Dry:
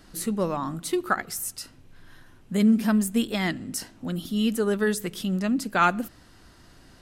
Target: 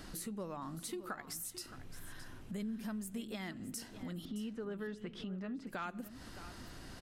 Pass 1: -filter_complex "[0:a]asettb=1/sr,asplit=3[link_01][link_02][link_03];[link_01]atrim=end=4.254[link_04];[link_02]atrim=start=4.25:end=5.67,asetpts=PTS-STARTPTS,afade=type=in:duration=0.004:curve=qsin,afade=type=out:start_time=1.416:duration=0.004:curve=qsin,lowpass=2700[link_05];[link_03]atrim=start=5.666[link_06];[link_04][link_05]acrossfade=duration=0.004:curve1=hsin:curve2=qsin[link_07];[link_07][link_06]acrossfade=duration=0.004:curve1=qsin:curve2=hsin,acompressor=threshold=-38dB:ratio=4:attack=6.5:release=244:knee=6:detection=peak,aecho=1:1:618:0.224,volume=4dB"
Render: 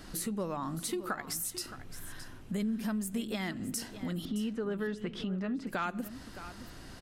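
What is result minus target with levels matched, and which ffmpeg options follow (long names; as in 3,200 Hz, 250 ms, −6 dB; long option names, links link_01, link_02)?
downward compressor: peak gain reduction −7.5 dB
-filter_complex "[0:a]asettb=1/sr,asplit=3[link_01][link_02][link_03];[link_01]atrim=end=4.254[link_04];[link_02]atrim=start=4.25:end=5.67,asetpts=PTS-STARTPTS,afade=type=in:duration=0.004:curve=qsin,afade=type=out:start_time=1.416:duration=0.004:curve=qsin,lowpass=2700[link_05];[link_03]atrim=start=5.666[link_06];[link_04][link_05]acrossfade=duration=0.004:curve1=hsin:curve2=qsin[link_07];[link_07][link_06]acrossfade=duration=0.004:curve1=qsin:curve2=hsin,acompressor=threshold=-48dB:ratio=4:attack=6.5:release=244:knee=6:detection=peak,aecho=1:1:618:0.224,volume=4dB"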